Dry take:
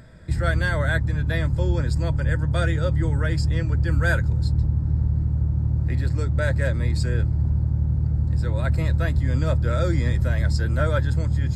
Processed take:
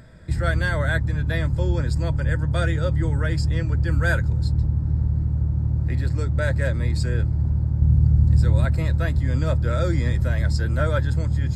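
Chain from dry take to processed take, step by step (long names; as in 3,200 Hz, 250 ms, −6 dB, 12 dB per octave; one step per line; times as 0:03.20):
0:07.82–0:08.65: bass and treble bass +6 dB, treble +6 dB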